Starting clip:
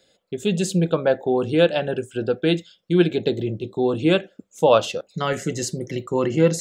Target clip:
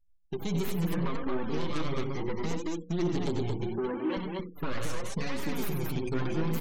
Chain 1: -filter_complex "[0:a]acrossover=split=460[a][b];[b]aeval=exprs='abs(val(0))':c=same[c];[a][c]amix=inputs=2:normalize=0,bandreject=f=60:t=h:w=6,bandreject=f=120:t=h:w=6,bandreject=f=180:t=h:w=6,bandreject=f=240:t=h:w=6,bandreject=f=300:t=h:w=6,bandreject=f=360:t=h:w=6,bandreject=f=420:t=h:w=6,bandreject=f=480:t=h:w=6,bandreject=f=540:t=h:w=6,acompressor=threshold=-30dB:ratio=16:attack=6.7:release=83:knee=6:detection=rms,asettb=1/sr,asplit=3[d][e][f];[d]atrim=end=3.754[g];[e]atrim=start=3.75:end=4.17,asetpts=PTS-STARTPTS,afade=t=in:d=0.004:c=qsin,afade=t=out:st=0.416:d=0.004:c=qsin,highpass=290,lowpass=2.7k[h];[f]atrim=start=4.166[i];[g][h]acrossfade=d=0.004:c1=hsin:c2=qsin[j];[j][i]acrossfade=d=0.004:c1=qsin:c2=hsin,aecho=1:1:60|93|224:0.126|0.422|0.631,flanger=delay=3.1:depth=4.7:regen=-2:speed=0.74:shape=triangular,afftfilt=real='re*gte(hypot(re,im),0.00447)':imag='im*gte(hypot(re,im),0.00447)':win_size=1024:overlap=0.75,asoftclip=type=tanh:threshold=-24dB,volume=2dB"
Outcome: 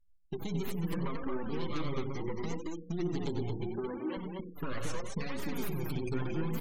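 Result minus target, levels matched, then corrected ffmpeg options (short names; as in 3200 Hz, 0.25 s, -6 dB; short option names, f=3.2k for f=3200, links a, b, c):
compressor: peak gain reduction +7 dB
-filter_complex "[0:a]acrossover=split=460[a][b];[b]aeval=exprs='abs(val(0))':c=same[c];[a][c]amix=inputs=2:normalize=0,bandreject=f=60:t=h:w=6,bandreject=f=120:t=h:w=6,bandreject=f=180:t=h:w=6,bandreject=f=240:t=h:w=6,bandreject=f=300:t=h:w=6,bandreject=f=360:t=h:w=6,bandreject=f=420:t=h:w=6,bandreject=f=480:t=h:w=6,bandreject=f=540:t=h:w=6,acompressor=threshold=-22.5dB:ratio=16:attack=6.7:release=83:knee=6:detection=rms,asettb=1/sr,asplit=3[d][e][f];[d]atrim=end=3.754[g];[e]atrim=start=3.75:end=4.17,asetpts=PTS-STARTPTS,afade=t=in:d=0.004:c=qsin,afade=t=out:st=0.416:d=0.004:c=qsin,highpass=290,lowpass=2.7k[h];[f]atrim=start=4.166[i];[g][h]acrossfade=d=0.004:c1=hsin:c2=qsin[j];[j][i]acrossfade=d=0.004:c1=qsin:c2=hsin,aecho=1:1:60|93|224:0.126|0.422|0.631,flanger=delay=3.1:depth=4.7:regen=-2:speed=0.74:shape=triangular,afftfilt=real='re*gte(hypot(re,im),0.00447)':imag='im*gte(hypot(re,im),0.00447)':win_size=1024:overlap=0.75,asoftclip=type=tanh:threshold=-24dB,volume=2dB"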